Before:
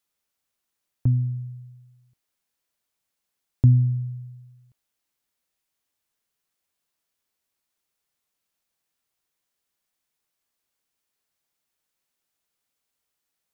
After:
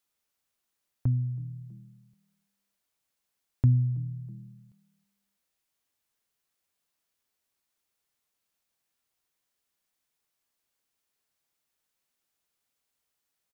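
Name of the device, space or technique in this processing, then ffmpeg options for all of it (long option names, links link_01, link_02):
parallel compression: -filter_complex "[0:a]bandreject=frequency=172.1:width_type=h:width=4,bandreject=frequency=344.2:width_type=h:width=4,bandreject=frequency=516.3:width_type=h:width=4,asplit=3[link_01][link_02][link_03];[link_02]adelay=324,afreqshift=38,volume=-24dB[link_04];[link_03]adelay=648,afreqshift=76,volume=-33.4dB[link_05];[link_01][link_04][link_05]amix=inputs=3:normalize=0,asplit=2[link_06][link_07];[link_07]acompressor=threshold=-37dB:ratio=6,volume=-1dB[link_08];[link_06][link_08]amix=inputs=2:normalize=0,volume=-6.5dB"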